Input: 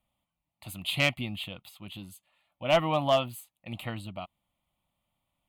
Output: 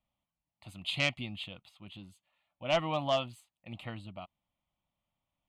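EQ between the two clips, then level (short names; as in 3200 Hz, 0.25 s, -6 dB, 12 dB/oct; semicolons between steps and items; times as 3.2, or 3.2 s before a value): dynamic EQ 6100 Hz, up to +8 dB, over -47 dBFS, Q 0.72; air absorption 73 m; -5.5 dB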